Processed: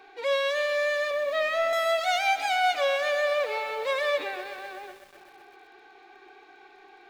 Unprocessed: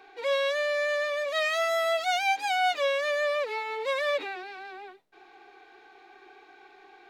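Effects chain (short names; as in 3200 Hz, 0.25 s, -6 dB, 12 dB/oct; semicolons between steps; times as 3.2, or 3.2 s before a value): 1.11–1.73 RIAA curve playback; lo-fi delay 0.126 s, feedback 80%, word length 8-bit, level -14 dB; gain +1 dB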